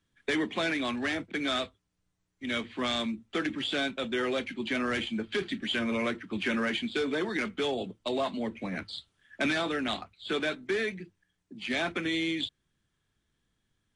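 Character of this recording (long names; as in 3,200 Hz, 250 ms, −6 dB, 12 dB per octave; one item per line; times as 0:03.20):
background noise floor −79 dBFS
spectral slope −2.0 dB per octave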